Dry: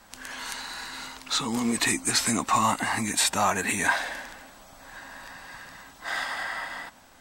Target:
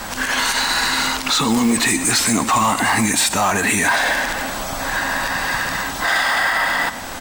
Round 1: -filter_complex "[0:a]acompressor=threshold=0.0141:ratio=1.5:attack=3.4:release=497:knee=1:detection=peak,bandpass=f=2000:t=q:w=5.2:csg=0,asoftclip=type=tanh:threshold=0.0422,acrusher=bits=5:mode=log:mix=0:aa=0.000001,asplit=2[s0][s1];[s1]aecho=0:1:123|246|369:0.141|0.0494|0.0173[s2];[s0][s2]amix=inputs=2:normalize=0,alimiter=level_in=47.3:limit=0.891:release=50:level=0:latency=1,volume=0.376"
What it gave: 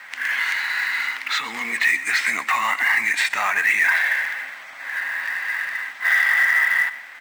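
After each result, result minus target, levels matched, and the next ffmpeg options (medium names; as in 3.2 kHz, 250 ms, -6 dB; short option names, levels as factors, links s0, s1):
2 kHz band +3.5 dB; compression: peak gain reduction -2.5 dB
-filter_complex "[0:a]acompressor=threshold=0.0141:ratio=1.5:attack=3.4:release=497:knee=1:detection=peak,asoftclip=type=tanh:threshold=0.0422,acrusher=bits=5:mode=log:mix=0:aa=0.000001,asplit=2[s0][s1];[s1]aecho=0:1:123|246|369:0.141|0.0494|0.0173[s2];[s0][s2]amix=inputs=2:normalize=0,alimiter=level_in=47.3:limit=0.891:release=50:level=0:latency=1,volume=0.376"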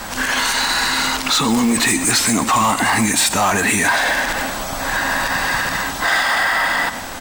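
compression: peak gain reduction -2.5 dB
-filter_complex "[0:a]acompressor=threshold=0.00562:ratio=1.5:attack=3.4:release=497:knee=1:detection=peak,asoftclip=type=tanh:threshold=0.0422,acrusher=bits=5:mode=log:mix=0:aa=0.000001,asplit=2[s0][s1];[s1]aecho=0:1:123|246|369:0.141|0.0494|0.0173[s2];[s0][s2]amix=inputs=2:normalize=0,alimiter=level_in=47.3:limit=0.891:release=50:level=0:latency=1,volume=0.376"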